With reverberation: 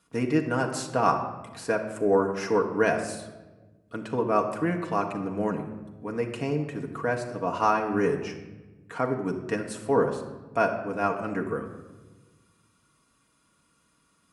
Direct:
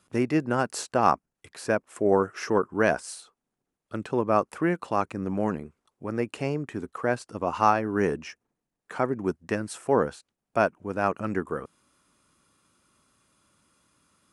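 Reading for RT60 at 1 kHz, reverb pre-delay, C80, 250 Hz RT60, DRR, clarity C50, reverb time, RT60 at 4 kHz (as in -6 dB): 1.1 s, 4 ms, 10.5 dB, 1.7 s, 1.0 dB, 8.5 dB, 1.2 s, 0.75 s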